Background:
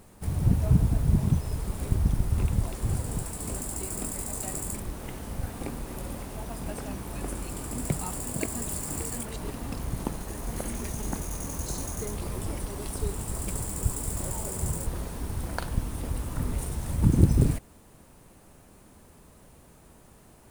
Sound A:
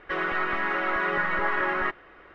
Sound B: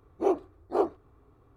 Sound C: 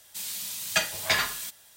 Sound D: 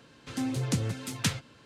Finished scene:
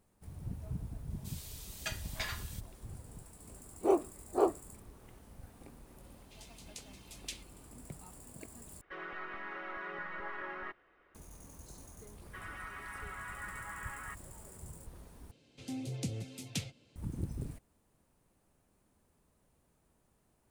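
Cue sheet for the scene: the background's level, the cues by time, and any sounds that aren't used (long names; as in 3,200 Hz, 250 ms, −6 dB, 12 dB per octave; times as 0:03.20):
background −19 dB
0:01.10: mix in C −15 dB
0:03.63: mix in B −2.5 dB
0:06.04: mix in D −12 dB + Butterworth high-pass 2,200 Hz
0:08.81: overwrite with A −16.5 dB
0:12.24: mix in A −18 dB + high-pass filter 790 Hz 24 dB per octave
0:15.31: overwrite with D −9 dB + flat-topped bell 1,300 Hz −12 dB 1.2 octaves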